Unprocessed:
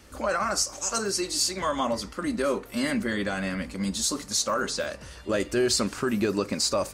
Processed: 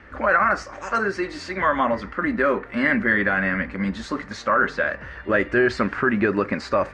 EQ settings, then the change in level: synth low-pass 1800 Hz, resonance Q 3.3; +4.0 dB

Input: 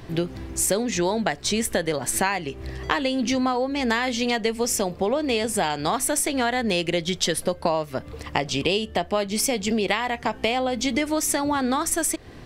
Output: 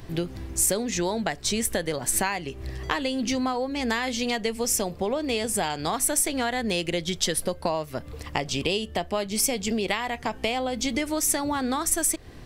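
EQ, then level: low shelf 78 Hz +7.5 dB; high shelf 6600 Hz +7.5 dB; -4.0 dB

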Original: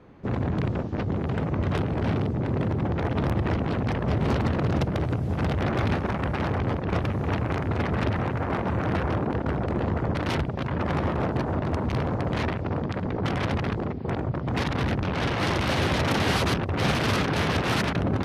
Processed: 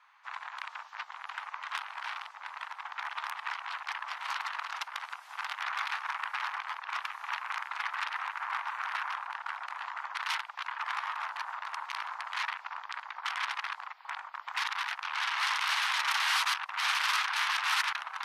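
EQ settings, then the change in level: steep high-pass 930 Hz 48 dB/oct; 0.0 dB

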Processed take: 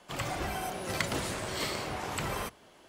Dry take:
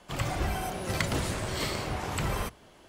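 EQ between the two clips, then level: low shelf 130 Hz -11 dB; -1.0 dB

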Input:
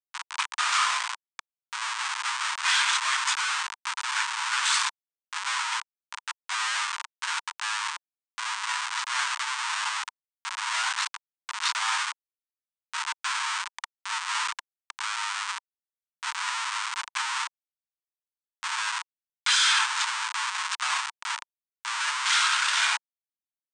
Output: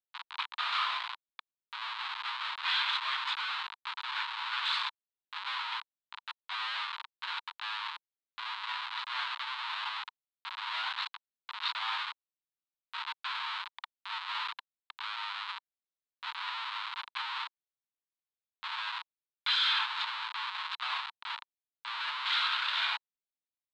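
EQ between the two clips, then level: EQ curve 1100 Hz 0 dB, 1800 Hz -3 dB, 2700 Hz 0 dB, 4000 Hz +4 dB, 5900 Hz -22 dB, 11000 Hz -29 dB; -6.5 dB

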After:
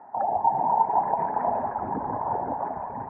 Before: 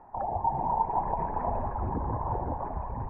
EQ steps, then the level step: speaker cabinet 290–2000 Hz, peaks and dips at 350 Hz -7 dB, 510 Hz -6 dB, 1100 Hz -8 dB; +8.5 dB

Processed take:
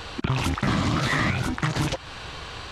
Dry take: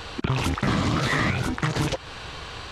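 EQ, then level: dynamic EQ 450 Hz, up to -6 dB, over -47 dBFS, Q 4.6; 0.0 dB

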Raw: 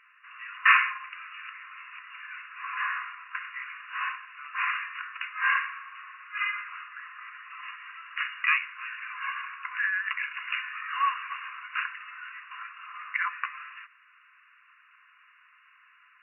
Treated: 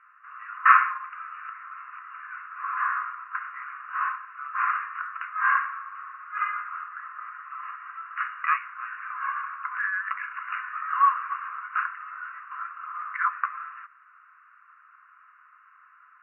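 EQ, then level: synth low-pass 1300 Hz, resonance Q 4.1; -3.0 dB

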